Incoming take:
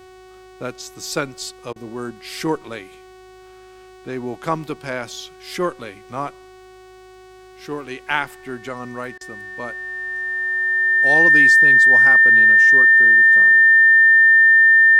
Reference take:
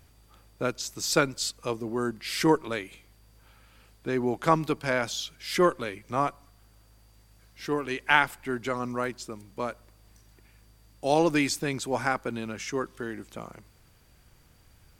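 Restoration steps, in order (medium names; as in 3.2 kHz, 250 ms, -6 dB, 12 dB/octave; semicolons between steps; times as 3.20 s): de-hum 372.2 Hz, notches 25; band-stop 1.8 kHz, Q 30; interpolate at 1.73/9.18 s, 28 ms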